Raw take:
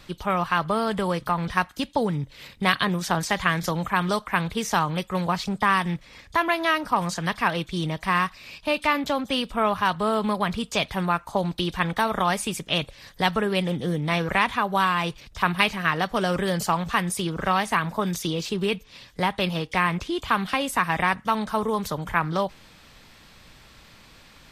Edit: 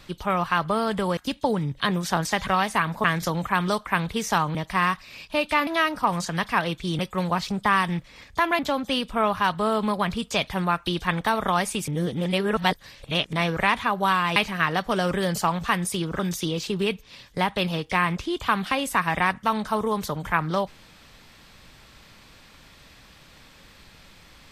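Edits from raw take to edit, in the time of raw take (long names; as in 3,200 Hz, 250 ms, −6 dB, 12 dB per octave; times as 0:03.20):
0:01.17–0:01.69: remove
0:02.32–0:02.78: remove
0:04.96–0:06.56: swap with 0:07.88–0:09.00
0:11.27–0:11.58: remove
0:12.60–0:14.05: reverse
0:15.08–0:15.61: remove
0:17.44–0:18.01: move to 0:03.45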